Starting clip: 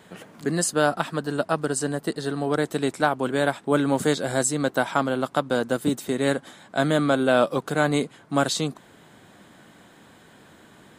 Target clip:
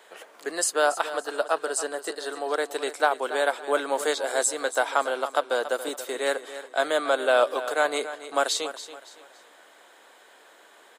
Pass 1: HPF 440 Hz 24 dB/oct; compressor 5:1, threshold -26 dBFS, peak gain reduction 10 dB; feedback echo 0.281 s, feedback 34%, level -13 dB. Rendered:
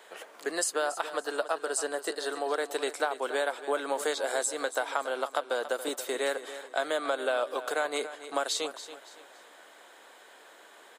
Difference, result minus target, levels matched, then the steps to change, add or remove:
compressor: peak gain reduction +10 dB
remove: compressor 5:1, threshold -26 dBFS, peak gain reduction 10 dB

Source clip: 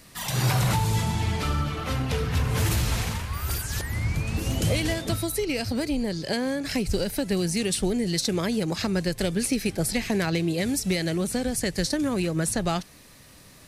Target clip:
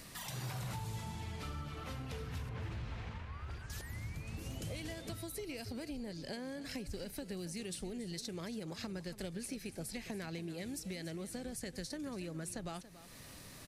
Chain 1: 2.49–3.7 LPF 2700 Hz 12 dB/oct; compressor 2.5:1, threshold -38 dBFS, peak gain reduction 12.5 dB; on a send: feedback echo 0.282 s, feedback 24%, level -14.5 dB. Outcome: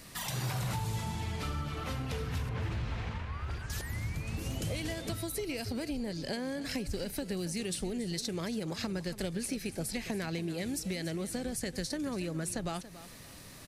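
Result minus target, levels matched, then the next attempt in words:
compressor: peak gain reduction -7 dB
2.49–3.7 LPF 2700 Hz 12 dB/oct; compressor 2.5:1, threshold -50 dBFS, peak gain reduction 19.5 dB; on a send: feedback echo 0.282 s, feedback 24%, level -14.5 dB

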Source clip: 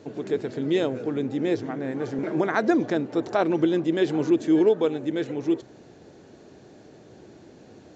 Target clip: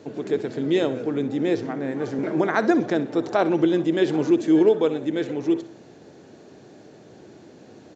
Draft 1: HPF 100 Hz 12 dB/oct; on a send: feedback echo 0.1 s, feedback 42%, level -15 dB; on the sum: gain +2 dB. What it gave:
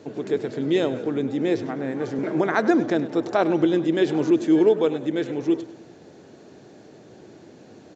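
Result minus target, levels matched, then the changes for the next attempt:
echo 37 ms late
change: feedback echo 63 ms, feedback 42%, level -15 dB

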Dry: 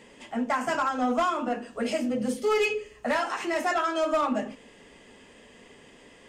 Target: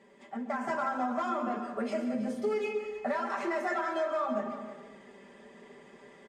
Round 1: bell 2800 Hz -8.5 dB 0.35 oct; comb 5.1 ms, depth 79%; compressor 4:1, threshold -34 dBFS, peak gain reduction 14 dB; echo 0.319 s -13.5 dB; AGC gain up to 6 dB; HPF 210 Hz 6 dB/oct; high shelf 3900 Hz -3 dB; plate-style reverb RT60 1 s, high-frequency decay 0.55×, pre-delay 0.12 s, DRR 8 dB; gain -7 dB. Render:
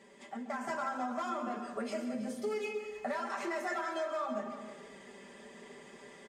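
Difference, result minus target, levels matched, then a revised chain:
8000 Hz band +8.5 dB; compressor: peak gain reduction +5 dB
bell 2800 Hz -8.5 dB 0.35 oct; comb 5.1 ms, depth 79%; compressor 4:1, threshold -27 dBFS, peak gain reduction 8.5 dB; echo 0.319 s -13.5 dB; AGC gain up to 6 dB; HPF 210 Hz 6 dB/oct; high shelf 3900 Hz -14 dB; plate-style reverb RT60 1 s, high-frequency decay 0.55×, pre-delay 0.12 s, DRR 8 dB; gain -7 dB

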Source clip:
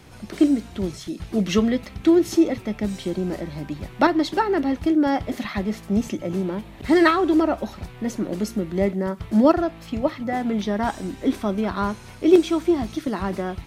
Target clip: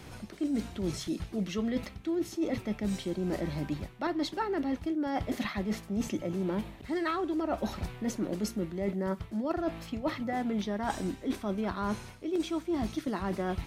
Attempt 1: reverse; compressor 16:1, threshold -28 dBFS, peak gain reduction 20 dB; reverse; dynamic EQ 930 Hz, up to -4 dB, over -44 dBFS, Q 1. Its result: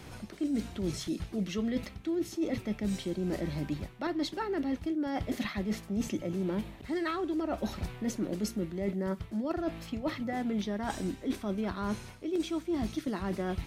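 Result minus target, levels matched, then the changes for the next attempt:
1000 Hz band -2.5 dB
remove: dynamic EQ 930 Hz, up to -4 dB, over -44 dBFS, Q 1

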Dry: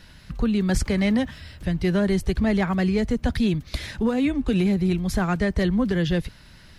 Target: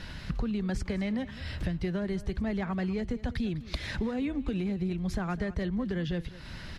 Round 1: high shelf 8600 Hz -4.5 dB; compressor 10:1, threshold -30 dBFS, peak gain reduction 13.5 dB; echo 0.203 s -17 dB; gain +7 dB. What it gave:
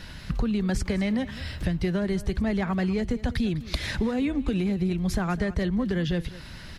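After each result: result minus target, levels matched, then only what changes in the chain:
compressor: peak gain reduction -5.5 dB; 8000 Hz band +4.0 dB
change: compressor 10:1, threshold -36 dBFS, peak gain reduction 18.5 dB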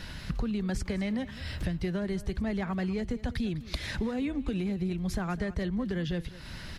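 8000 Hz band +4.0 dB
change: high shelf 8600 Hz -15 dB

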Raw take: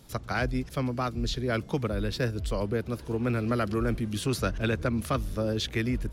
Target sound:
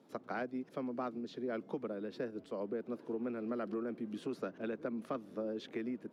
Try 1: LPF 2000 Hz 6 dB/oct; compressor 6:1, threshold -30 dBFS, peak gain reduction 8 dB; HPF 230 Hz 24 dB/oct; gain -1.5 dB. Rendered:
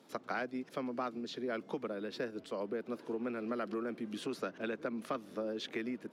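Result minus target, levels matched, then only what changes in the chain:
2000 Hz band +4.5 dB
change: LPF 600 Hz 6 dB/oct

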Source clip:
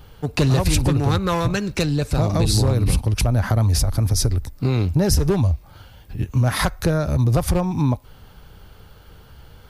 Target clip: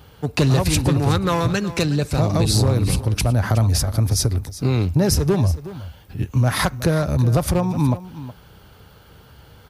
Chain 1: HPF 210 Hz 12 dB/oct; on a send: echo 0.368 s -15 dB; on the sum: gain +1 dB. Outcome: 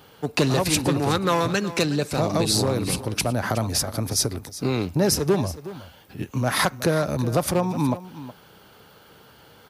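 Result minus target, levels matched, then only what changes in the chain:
125 Hz band -5.5 dB
change: HPF 71 Hz 12 dB/oct

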